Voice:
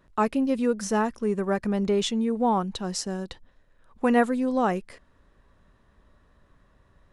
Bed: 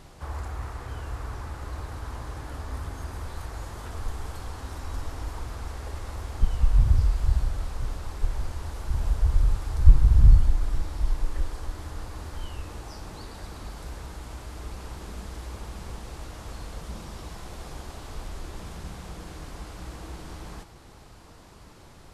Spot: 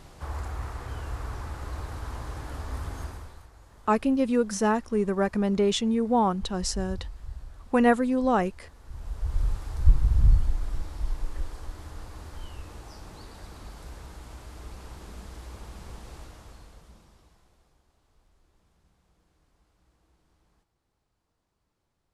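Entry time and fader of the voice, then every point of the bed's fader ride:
3.70 s, +0.5 dB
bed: 0:03.03 0 dB
0:03.51 −16.5 dB
0:08.79 −16.5 dB
0:09.42 −4.5 dB
0:16.17 −4.5 dB
0:17.82 −28.5 dB

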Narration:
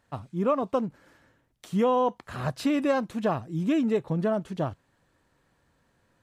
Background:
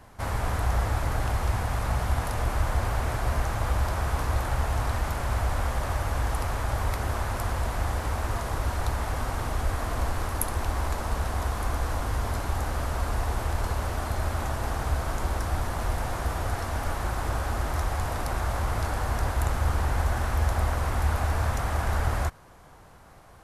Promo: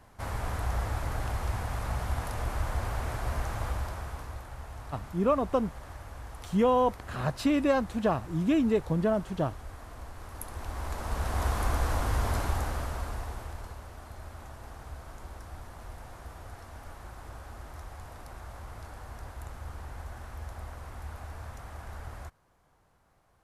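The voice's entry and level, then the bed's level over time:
4.80 s, −0.5 dB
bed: 0:03.63 −5.5 dB
0:04.47 −16 dB
0:10.13 −16 dB
0:11.47 0 dB
0:12.42 0 dB
0:13.84 −16 dB

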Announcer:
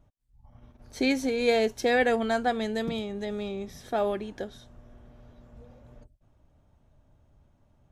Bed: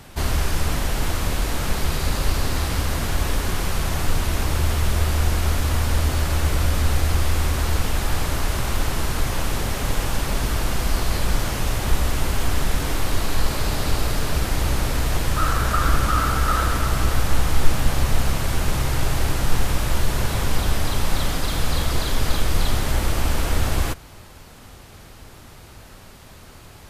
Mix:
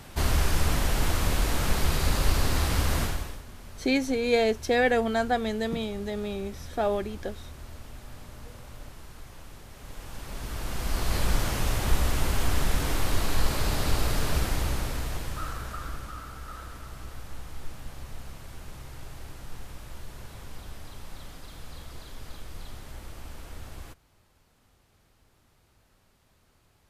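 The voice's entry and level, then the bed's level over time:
2.85 s, +0.5 dB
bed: 0:03.02 −2.5 dB
0:03.45 −23 dB
0:09.69 −23 dB
0:11.18 −4 dB
0:14.37 −4 dB
0:16.24 −21 dB

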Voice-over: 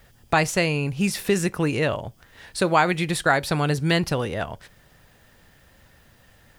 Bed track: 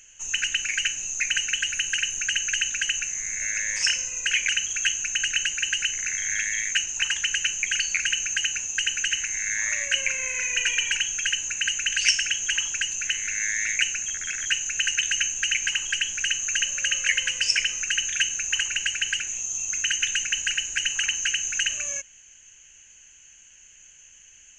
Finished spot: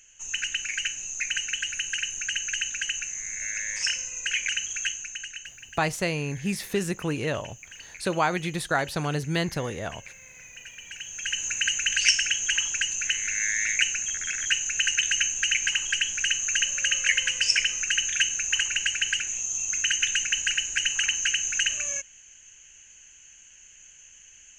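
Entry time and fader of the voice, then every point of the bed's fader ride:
5.45 s, −5.5 dB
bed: 0:04.80 −4 dB
0:05.66 −20 dB
0:10.78 −20 dB
0:11.45 0 dB

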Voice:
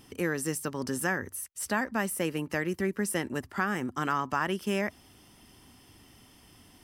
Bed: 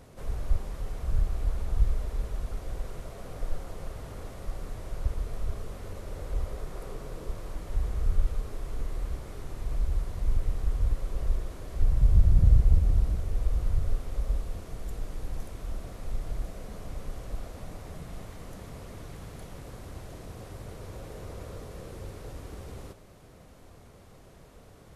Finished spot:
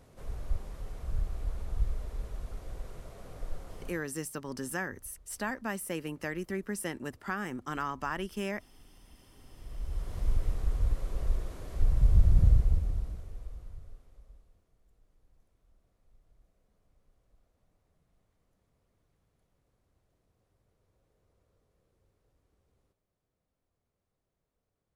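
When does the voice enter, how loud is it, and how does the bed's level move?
3.70 s, −5.5 dB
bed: 0:03.88 −6 dB
0:04.15 −27 dB
0:09.03 −27 dB
0:10.16 −2 dB
0:12.44 −2 dB
0:14.73 −32 dB

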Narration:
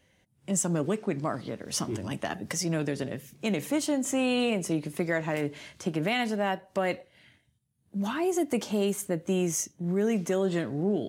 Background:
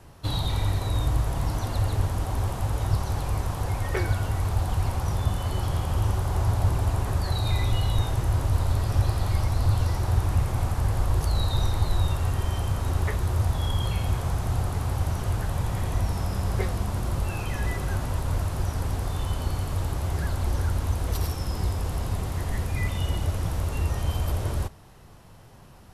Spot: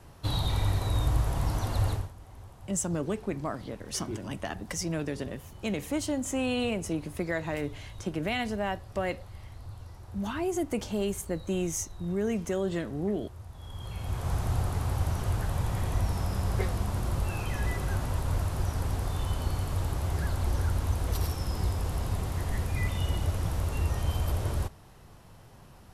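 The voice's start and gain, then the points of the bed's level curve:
2.20 s, −3.0 dB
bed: 0:01.92 −2 dB
0:02.14 −21 dB
0:13.49 −21 dB
0:14.33 −2.5 dB

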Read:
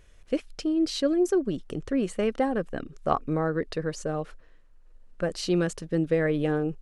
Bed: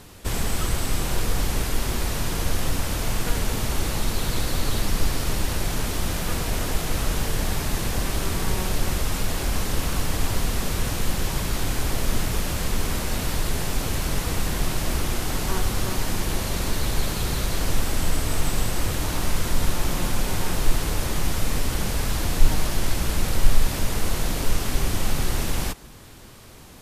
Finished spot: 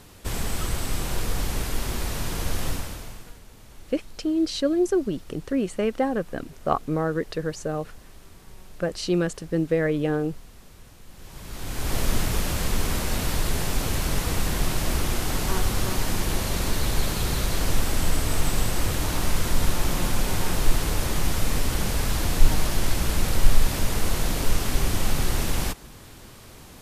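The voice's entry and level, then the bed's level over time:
3.60 s, +1.5 dB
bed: 0:02.71 −3 dB
0:03.41 −23.5 dB
0:11.07 −23.5 dB
0:11.96 0 dB

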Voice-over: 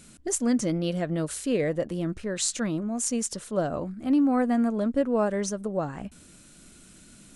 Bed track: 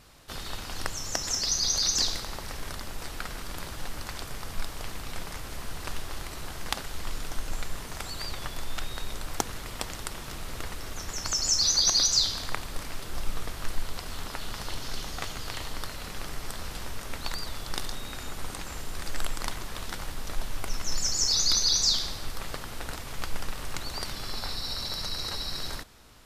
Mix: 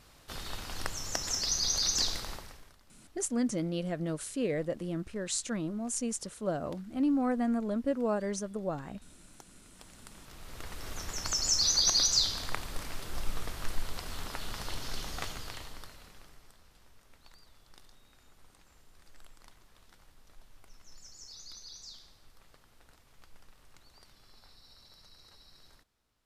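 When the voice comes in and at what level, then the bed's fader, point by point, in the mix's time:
2.90 s, −6.0 dB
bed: 0:02.31 −3.5 dB
0:02.78 −25.5 dB
0:09.53 −25.5 dB
0:10.90 −3 dB
0:15.26 −3 dB
0:16.62 −24.5 dB

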